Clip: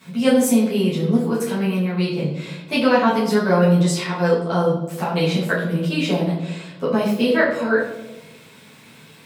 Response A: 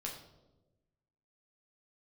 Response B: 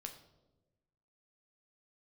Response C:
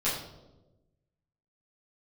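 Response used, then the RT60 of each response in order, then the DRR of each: C; 1.1, 1.1, 1.1 seconds; −2.0, 3.5, −11.0 decibels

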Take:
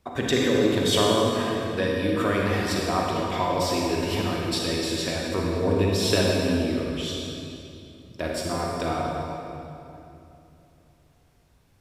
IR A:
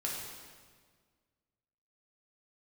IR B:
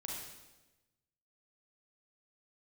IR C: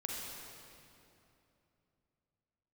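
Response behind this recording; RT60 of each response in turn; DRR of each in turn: C; 1.7, 1.1, 2.9 seconds; −4.0, −3.0, −2.5 decibels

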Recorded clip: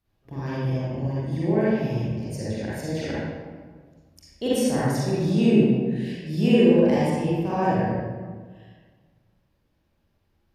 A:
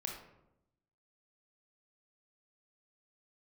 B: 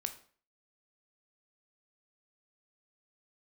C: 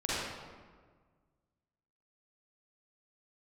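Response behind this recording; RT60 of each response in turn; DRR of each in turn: C; 0.85, 0.45, 1.6 seconds; 0.5, 7.0, −9.5 decibels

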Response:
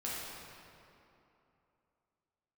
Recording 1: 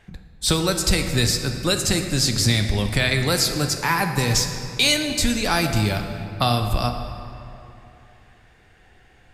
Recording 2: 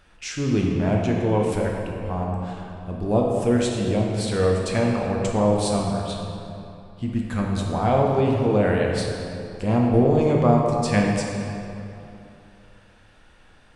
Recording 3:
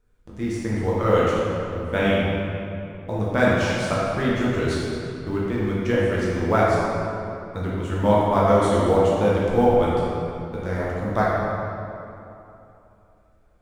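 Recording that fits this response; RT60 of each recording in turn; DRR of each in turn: 3; 2.9, 2.9, 2.9 seconds; 5.0, −1.5, −7.5 decibels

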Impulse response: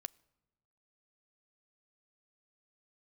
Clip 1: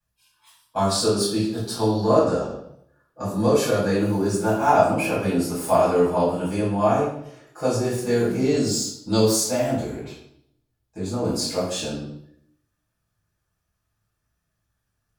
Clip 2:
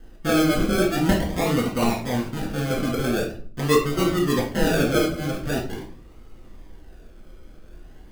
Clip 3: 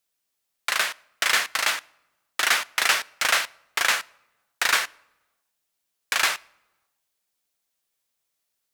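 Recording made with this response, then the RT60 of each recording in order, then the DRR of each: 3; 0.70, 0.45, 1.1 seconds; −12.5, −3.0, 18.5 decibels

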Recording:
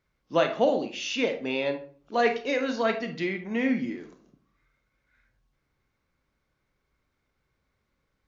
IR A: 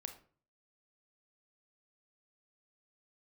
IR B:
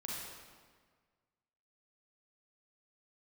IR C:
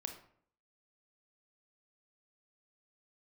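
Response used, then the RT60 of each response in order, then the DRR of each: A; 0.45, 1.6, 0.60 seconds; 6.5, −4.5, 5.0 decibels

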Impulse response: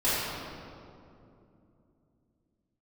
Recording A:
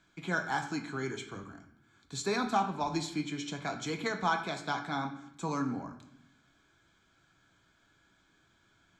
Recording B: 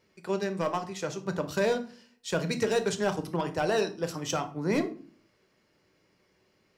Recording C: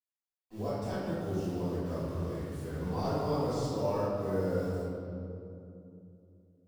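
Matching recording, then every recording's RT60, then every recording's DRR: C; 0.75, 0.45, 2.7 seconds; 4.5, 7.0, −13.5 decibels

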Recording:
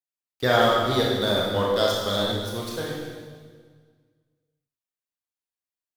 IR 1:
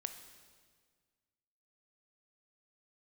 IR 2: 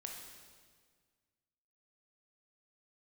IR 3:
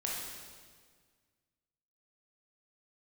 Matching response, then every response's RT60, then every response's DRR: 3; 1.7, 1.7, 1.7 seconds; 7.5, 0.5, −4.0 decibels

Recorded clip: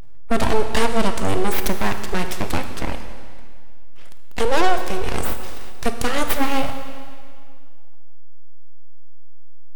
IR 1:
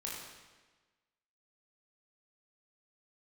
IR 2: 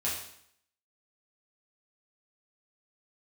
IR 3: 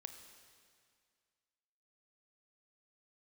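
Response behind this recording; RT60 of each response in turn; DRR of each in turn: 3; 1.3, 0.65, 2.1 seconds; −4.5, −8.0, 6.5 decibels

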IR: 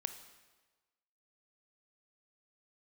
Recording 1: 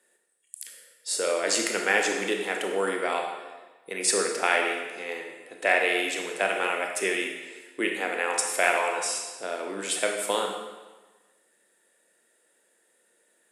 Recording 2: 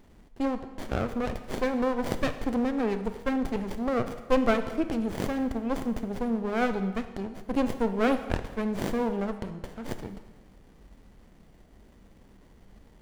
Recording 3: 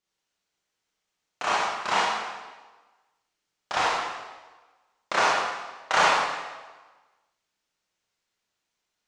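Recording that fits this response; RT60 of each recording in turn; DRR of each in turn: 2; 1.3, 1.3, 1.3 seconds; 2.0, 9.0, −7.5 decibels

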